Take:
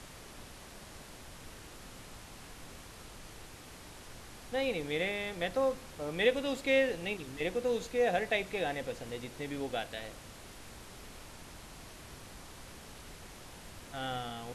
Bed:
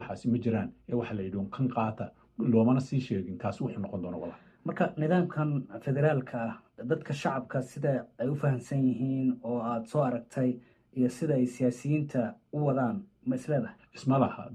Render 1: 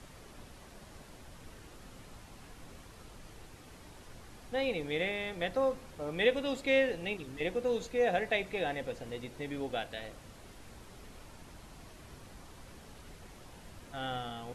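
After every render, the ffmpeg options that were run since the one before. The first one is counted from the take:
-af "afftdn=nr=6:nf=-51"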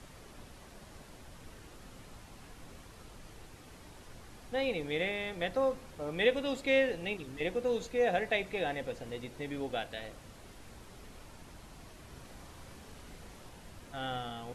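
-filter_complex "[0:a]asettb=1/sr,asplit=3[a][b][c];[a]atrim=end=12.124[d];[b]atrim=start=12.12:end=13.49,asetpts=PTS-STARTPTS,afade=t=in:d=0.004:c=qsin,afade=t=out:st=1.366:d=0.004:c=qsin,asplit=2[e][f];[f]adelay=39,volume=-5dB[g];[e][g]amix=inputs=2:normalize=0,atrim=end_sample=60417[h];[c]atrim=start=13.486[i];[d][h]acrossfade=d=0.004:c1=hsin:c2=qsin[j];[j][i]acrossfade=d=0.004:c1=qsin:c2=hsin"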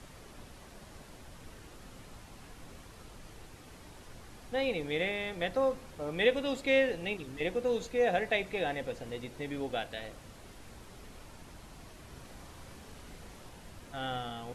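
-af "volume=1dB"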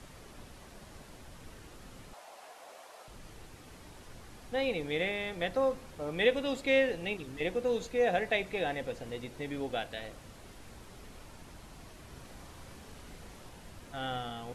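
-filter_complex "[0:a]asettb=1/sr,asplit=3[a][b][c];[a]atrim=end=2.134[d];[b]atrim=start=2.13:end=3.08,asetpts=PTS-STARTPTS,afade=t=in:d=0.004:c=qsin,afade=t=out:st=0.946:d=0.004:c=qsin,highpass=f=650:t=q:w=3.1[e];[c]atrim=start=3.076[f];[d][e]acrossfade=d=0.004:c1=hsin:c2=qsin[g];[g][f]acrossfade=d=0.004:c1=qsin:c2=hsin"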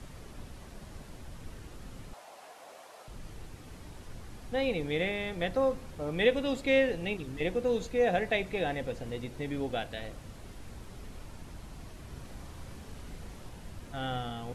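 -af "lowshelf=f=240:g=7.5"

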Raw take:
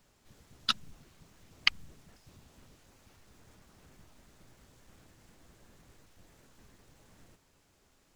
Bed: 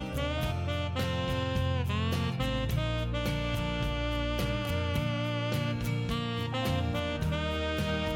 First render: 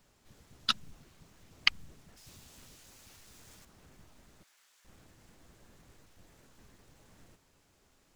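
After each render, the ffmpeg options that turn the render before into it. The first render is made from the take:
-filter_complex "[0:a]asettb=1/sr,asplit=3[a][b][c];[a]atrim=end=2.174[d];[b]atrim=start=2.17:end=3.65,asetpts=PTS-STARTPTS,afade=t=in:d=0.004:c=qsin,afade=t=out:st=1.476:d=0.004:c=qsin,highshelf=f=2.3k:g=11[e];[c]atrim=start=3.646[f];[d][e]acrossfade=d=0.004:c1=hsin:c2=qsin[g];[g][f]acrossfade=d=0.004:c1=qsin:c2=hsin,asettb=1/sr,asplit=3[h][i][j];[h]atrim=end=4.434[k];[i]atrim=start=4.43:end=4.85,asetpts=PTS-STARTPTS,afade=t=in:d=0.004:c=qsin,afade=t=out:st=0.416:d=0.004:c=qsin,highpass=1.4k[l];[j]atrim=start=4.846[m];[k][l]acrossfade=d=0.004:c1=hsin:c2=qsin[n];[n][m]acrossfade=d=0.004:c1=qsin:c2=hsin"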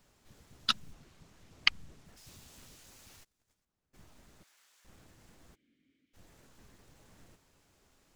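-filter_complex "[0:a]asettb=1/sr,asplit=3[a][b][c];[a]atrim=end=0.934[d];[b]atrim=start=0.93:end=2.06,asetpts=PTS-STARTPTS,afade=t=in:d=0.004:c=qsin,afade=t=out:st=1.126:d=0.004:c=qsin,highshelf=f=12k:g=-9[e];[c]atrim=start=2.056[f];[d][e]acrossfade=d=0.004:c1=hsin:c2=qsin[g];[g][f]acrossfade=d=0.004:c1=qsin:c2=hsin,asplit=3[h][i][j];[h]afade=t=out:st=3.23:d=0.02[k];[i]agate=range=-27dB:threshold=-53dB:ratio=16:release=100:detection=peak,afade=t=in:st=3.23:d=0.02,afade=t=out:st=3.93:d=0.02[l];[j]afade=t=in:st=3.93:d=0.02[m];[k][l][m]amix=inputs=3:normalize=0,asplit=3[n][o][p];[n]afade=t=out:st=5.54:d=0.02[q];[o]asplit=3[r][s][t];[r]bandpass=f=270:t=q:w=8,volume=0dB[u];[s]bandpass=f=2.29k:t=q:w=8,volume=-6dB[v];[t]bandpass=f=3.01k:t=q:w=8,volume=-9dB[w];[u][v][w]amix=inputs=3:normalize=0,afade=t=in:st=5.54:d=0.02,afade=t=out:st=6.13:d=0.02[x];[p]afade=t=in:st=6.13:d=0.02[y];[q][x][y]amix=inputs=3:normalize=0"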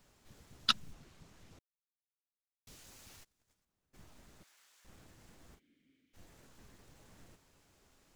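-filter_complex "[0:a]asettb=1/sr,asplit=3[a][b][c];[a]atrim=end=5.474[d];[b]atrim=start=5.47:end=6.24,asetpts=PTS-STARTPTS,afade=t=in:d=0.004:c=qsin,afade=t=out:st=0.766:d=0.004:c=qsin,asplit=2[e][f];[f]adelay=41,volume=-6dB[g];[e][g]amix=inputs=2:normalize=0,atrim=end_sample=33957[h];[c]atrim=start=6.236[i];[d][h]acrossfade=d=0.004:c1=hsin:c2=qsin[j];[j][i]acrossfade=d=0.004:c1=qsin:c2=hsin,asplit=3[k][l][m];[k]atrim=end=1.59,asetpts=PTS-STARTPTS,afade=t=out:st=1.586:d=0.004:c=hsin[n];[l]atrim=start=1.59:end=2.67,asetpts=PTS-STARTPTS,volume=0[o];[m]atrim=start=2.67,asetpts=PTS-STARTPTS,afade=t=in:d=0.004:c=hsin[p];[n][o][p]concat=n=3:v=0:a=1"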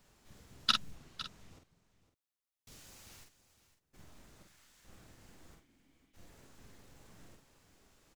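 -filter_complex "[0:a]asplit=2[a][b];[b]adelay=47,volume=-5dB[c];[a][c]amix=inputs=2:normalize=0,aecho=1:1:507:0.188"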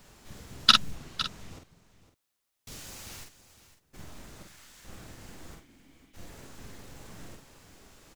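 -af "volume=11.5dB,alimiter=limit=-2dB:level=0:latency=1"

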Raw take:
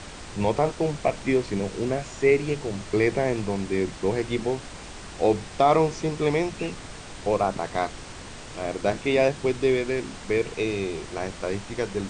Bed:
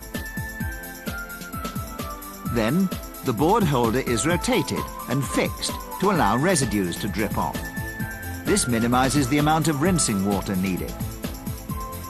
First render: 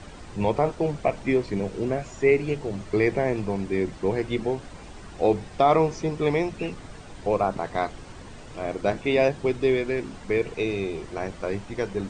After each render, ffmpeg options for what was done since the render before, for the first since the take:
-af "afftdn=nr=9:nf=-41"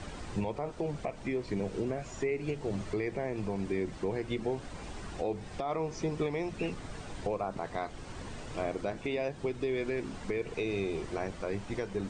-af "acompressor=threshold=-24dB:ratio=3,alimiter=limit=-22.5dB:level=0:latency=1:release=400"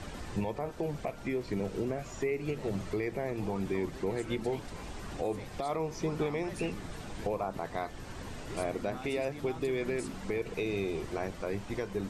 -filter_complex "[1:a]volume=-25.5dB[a];[0:a][a]amix=inputs=2:normalize=0"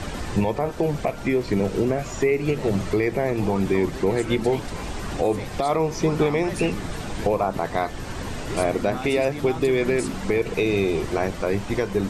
-af "volume=11.5dB"

